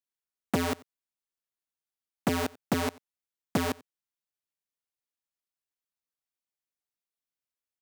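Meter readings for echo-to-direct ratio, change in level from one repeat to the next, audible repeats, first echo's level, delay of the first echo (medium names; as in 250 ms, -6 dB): -23.5 dB, no regular repeats, 1, -23.5 dB, 90 ms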